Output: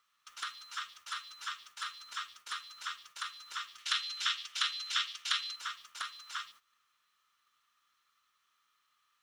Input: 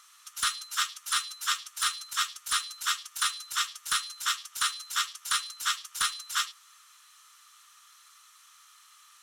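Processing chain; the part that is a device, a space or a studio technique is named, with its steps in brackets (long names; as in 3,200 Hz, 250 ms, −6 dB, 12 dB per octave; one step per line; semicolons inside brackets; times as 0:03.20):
baby monitor (band-pass filter 410–3,700 Hz; downward compressor 8 to 1, threshold −37 dBFS, peak gain reduction 12 dB; white noise bed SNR 25 dB; noise gate −56 dBFS, range −16 dB)
0:03.78–0:05.56: meter weighting curve D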